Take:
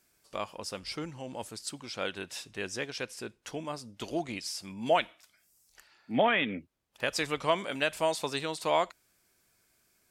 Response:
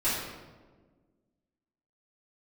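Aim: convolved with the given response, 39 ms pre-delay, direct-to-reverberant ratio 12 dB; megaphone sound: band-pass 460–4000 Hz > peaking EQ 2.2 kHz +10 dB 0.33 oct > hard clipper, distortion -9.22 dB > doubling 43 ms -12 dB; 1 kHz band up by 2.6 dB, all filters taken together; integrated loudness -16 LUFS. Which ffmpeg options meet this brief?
-filter_complex "[0:a]equalizer=f=1000:t=o:g=3.5,asplit=2[s0][s1];[1:a]atrim=start_sample=2205,adelay=39[s2];[s1][s2]afir=irnorm=-1:irlink=0,volume=0.075[s3];[s0][s3]amix=inputs=2:normalize=0,highpass=460,lowpass=4000,equalizer=f=2200:t=o:w=0.33:g=10,asoftclip=type=hard:threshold=0.075,asplit=2[s4][s5];[s5]adelay=43,volume=0.251[s6];[s4][s6]amix=inputs=2:normalize=0,volume=7.08"

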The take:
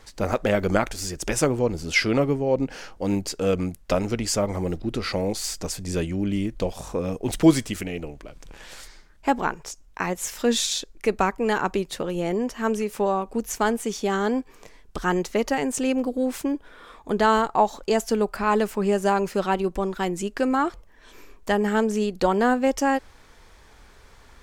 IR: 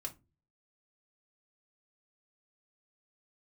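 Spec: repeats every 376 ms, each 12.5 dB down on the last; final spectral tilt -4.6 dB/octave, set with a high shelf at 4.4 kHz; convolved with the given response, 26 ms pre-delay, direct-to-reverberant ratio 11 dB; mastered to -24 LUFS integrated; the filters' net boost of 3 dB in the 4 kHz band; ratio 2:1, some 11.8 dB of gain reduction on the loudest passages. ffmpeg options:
-filter_complex "[0:a]equalizer=f=4000:t=o:g=8.5,highshelf=f=4400:g=-8.5,acompressor=threshold=0.0251:ratio=2,aecho=1:1:376|752|1128:0.237|0.0569|0.0137,asplit=2[s0][s1];[1:a]atrim=start_sample=2205,adelay=26[s2];[s1][s2]afir=irnorm=-1:irlink=0,volume=0.355[s3];[s0][s3]amix=inputs=2:normalize=0,volume=2.24"

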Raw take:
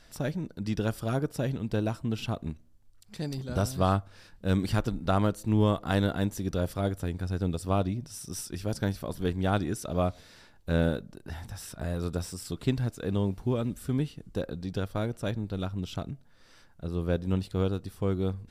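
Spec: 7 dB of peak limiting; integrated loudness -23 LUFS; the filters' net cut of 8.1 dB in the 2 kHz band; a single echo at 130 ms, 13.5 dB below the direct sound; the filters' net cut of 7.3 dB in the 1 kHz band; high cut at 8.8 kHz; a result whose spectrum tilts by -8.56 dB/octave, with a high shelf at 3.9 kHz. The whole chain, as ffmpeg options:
-af "lowpass=8800,equalizer=f=1000:t=o:g=-9,equalizer=f=2000:t=o:g=-6,highshelf=f=3900:g=-6,alimiter=limit=0.1:level=0:latency=1,aecho=1:1:130:0.211,volume=3.35"

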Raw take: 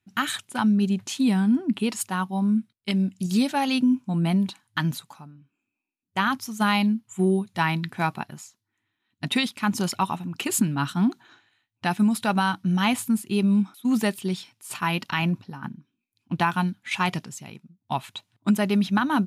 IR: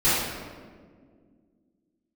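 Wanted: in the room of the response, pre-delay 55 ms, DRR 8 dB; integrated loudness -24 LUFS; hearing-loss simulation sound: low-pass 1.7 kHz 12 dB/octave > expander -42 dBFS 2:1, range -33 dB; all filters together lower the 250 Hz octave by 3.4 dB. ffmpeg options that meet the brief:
-filter_complex "[0:a]equalizer=f=250:t=o:g=-4.5,asplit=2[s0][s1];[1:a]atrim=start_sample=2205,adelay=55[s2];[s1][s2]afir=irnorm=-1:irlink=0,volume=0.0562[s3];[s0][s3]amix=inputs=2:normalize=0,lowpass=1700,agate=range=0.0224:threshold=0.00794:ratio=2,volume=1.41"

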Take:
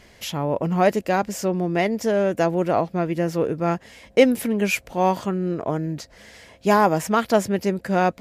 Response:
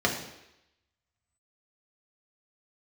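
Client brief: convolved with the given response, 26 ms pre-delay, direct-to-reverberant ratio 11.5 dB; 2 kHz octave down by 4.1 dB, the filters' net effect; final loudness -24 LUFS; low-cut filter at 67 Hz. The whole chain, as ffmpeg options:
-filter_complex "[0:a]highpass=67,equalizer=f=2000:t=o:g=-5.5,asplit=2[s0][s1];[1:a]atrim=start_sample=2205,adelay=26[s2];[s1][s2]afir=irnorm=-1:irlink=0,volume=0.0596[s3];[s0][s3]amix=inputs=2:normalize=0,volume=0.794"

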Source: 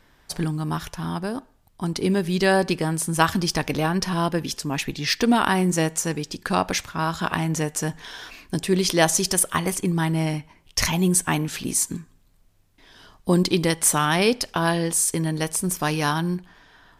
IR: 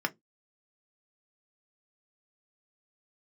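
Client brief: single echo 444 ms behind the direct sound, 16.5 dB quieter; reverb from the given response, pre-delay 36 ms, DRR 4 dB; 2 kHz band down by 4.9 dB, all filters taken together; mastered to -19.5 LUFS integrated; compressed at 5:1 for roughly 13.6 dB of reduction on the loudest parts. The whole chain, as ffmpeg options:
-filter_complex "[0:a]equalizer=f=2000:t=o:g=-6.5,acompressor=threshold=0.0316:ratio=5,aecho=1:1:444:0.15,asplit=2[s0][s1];[1:a]atrim=start_sample=2205,adelay=36[s2];[s1][s2]afir=irnorm=-1:irlink=0,volume=0.266[s3];[s0][s3]amix=inputs=2:normalize=0,volume=4.22"

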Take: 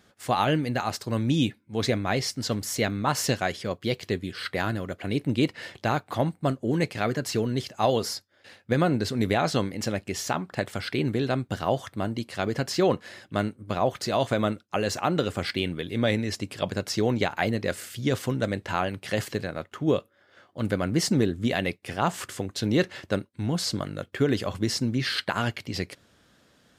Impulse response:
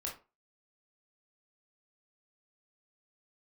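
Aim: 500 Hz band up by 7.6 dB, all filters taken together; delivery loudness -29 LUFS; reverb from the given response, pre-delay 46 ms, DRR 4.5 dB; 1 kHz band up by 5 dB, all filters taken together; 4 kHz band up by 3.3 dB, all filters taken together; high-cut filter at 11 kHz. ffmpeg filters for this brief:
-filter_complex "[0:a]lowpass=11000,equalizer=f=500:t=o:g=8.5,equalizer=f=1000:t=o:g=3,equalizer=f=4000:t=o:g=4,asplit=2[s0][s1];[1:a]atrim=start_sample=2205,adelay=46[s2];[s1][s2]afir=irnorm=-1:irlink=0,volume=0.596[s3];[s0][s3]amix=inputs=2:normalize=0,volume=0.422"

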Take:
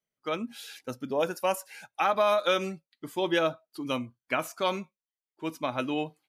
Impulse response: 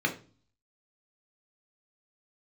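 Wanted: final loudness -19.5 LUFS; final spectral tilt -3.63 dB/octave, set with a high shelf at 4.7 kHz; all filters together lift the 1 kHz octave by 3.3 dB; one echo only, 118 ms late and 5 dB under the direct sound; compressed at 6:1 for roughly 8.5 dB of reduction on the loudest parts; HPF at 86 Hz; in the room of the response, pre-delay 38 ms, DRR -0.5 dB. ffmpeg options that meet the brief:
-filter_complex "[0:a]highpass=86,equalizer=f=1000:t=o:g=4.5,highshelf=f=4700:g=-3.5,acompressor=threshold=0.0447:ratio=6,aecho=1:1:118:0.562,asplit=2[s0][s1];[1:a]atrim=start_sample=2205,adelay=38[s2];[s1][s2]afir=irnorm=-1:irlink=0,volume=0.355[s3];[s0][s3]amix=inputs=2:normalize=0,volume=3.16"

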